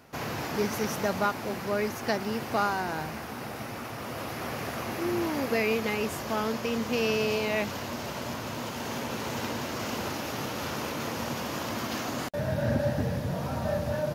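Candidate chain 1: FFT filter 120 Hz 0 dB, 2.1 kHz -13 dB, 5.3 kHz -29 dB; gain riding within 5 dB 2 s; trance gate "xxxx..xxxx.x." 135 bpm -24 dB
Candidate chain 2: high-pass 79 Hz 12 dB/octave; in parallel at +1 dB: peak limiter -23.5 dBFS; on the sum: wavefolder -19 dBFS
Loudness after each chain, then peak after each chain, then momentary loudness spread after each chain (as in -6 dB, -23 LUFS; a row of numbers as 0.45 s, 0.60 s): -38.0 LUFS, -26.5 LUFS; -20.5 dBFS, -19.0 dBFS; 6 LU, 4 LU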